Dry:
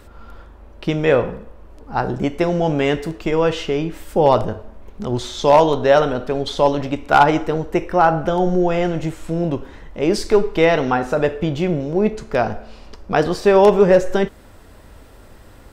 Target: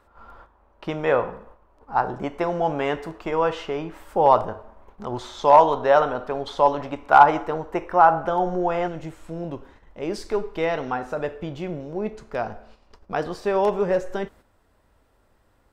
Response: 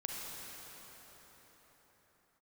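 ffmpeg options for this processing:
-af "asetnsamples=n=441:p=0,asendcmd='8.88 equalizer g 5',equalizer=f=990:t=o:w=1.8:g=14,agate=range=-8dB:threshold=-35dB:ratio=16:detection=peak,volume=-12dB"

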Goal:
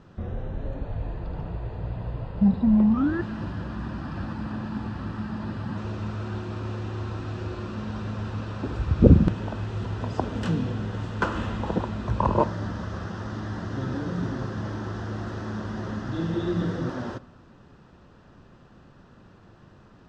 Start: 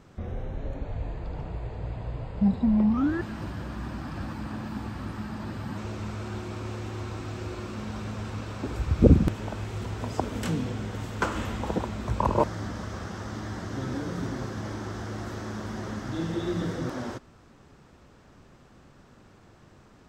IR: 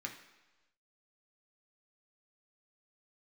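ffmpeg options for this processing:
-filter_complex "[0:a]lowpass=4.4k,lowshelf=f=390:g=3.5,bandreject=f=2.2k:w=7.3,asplit=2[a][b];[1:a]atrim=start_sample=2205,asetrate=27783,aresample=44100[c];[b][c]afir=irnorm=-1:irlink=0,volume=-15dB[d];[a][d]amix=inputs=2:normalize=0"

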